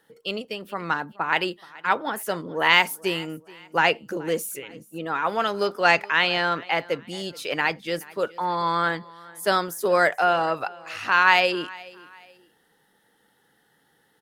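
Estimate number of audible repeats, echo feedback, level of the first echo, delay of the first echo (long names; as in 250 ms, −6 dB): 2, 35%, −22.0 dB, 426 ms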